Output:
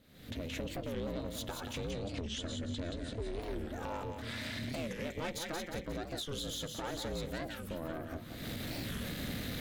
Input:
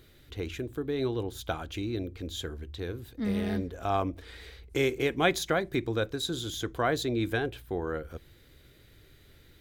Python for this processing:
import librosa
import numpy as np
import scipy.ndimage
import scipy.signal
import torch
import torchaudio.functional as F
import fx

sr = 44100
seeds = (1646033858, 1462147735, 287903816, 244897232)

y = fx.recorder_agc(x, sr, target_db=-19.0, rise_db_per_s=63.0, max_gain_db=30)
y = fx.echo_wet_highpass(y, sr, ms=178, feedback_pct=46, hz=1600.0, wet_db=-7)
y = 10.0 ** (-24.0 / 20.0) * np.tanh(y / 10.0 ** (-24.0 / 20.0))
y = fx.steep_lowpass(y, sr, hz=9600.0, slope=96, at=(1.72, 3.42), fade=0.02)
y = y + 10.0 ** (-7.5 / 20.0) * np.pad(y, (int(179 * sr / 1000.0), 0))[:len(y)]
y = y * np.sin(2.0 * np.pi * 170.0 * np.arange(len(y)) / sr)
y = fx.record_warp(y, sr, rpm=45.0, depth_cents=250.0)
y = y * librosa.db_to_amplitude(-7.0)